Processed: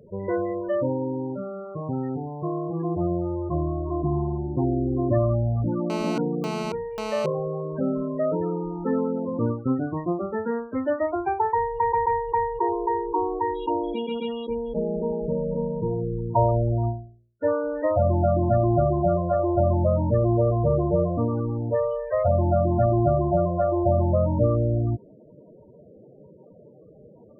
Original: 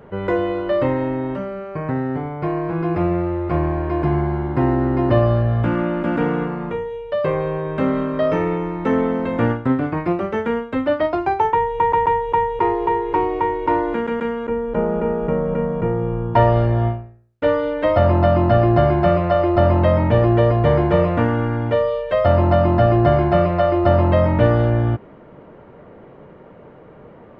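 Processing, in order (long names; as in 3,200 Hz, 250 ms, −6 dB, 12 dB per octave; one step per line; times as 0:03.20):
0:13.54–0:15.01: high shelf with overshoot 2,500 Hz +14 dB, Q 3
spectral peaks only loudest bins 16
0:05.90–0:07.26: phone interference −25 dBFS
level −5.5 dB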